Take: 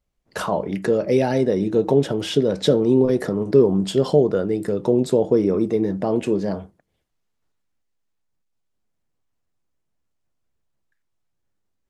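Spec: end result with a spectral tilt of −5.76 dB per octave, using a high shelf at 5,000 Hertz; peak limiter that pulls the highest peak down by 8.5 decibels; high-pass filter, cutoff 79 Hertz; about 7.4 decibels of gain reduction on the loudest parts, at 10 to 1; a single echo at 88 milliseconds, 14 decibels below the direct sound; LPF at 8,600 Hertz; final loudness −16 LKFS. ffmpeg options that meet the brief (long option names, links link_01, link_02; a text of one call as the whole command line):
ffmpeg -i in.wav -af "highpass=79,lowpass=8600,highshelf=frequency=5000:gain=-6.5,acompressor=threshold=-17dB:ratio=10,alimiter=limit=-16dB:level=0:latency=1,aecho=1:1:88:0.2,volume=10dB" out.wav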